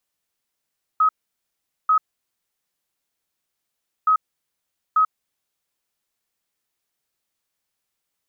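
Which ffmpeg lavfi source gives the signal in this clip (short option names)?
-f lavfi -i "aevalsrc='0.224*sin(2*PI*1270*t)*clip(min(mod(mod(t,3.07),0.89),0.09-mod(mod(t,3.07),0.89))/0.005,0,1)*lt(mod(t,3.07),1.78)':d=6.14:s=44100"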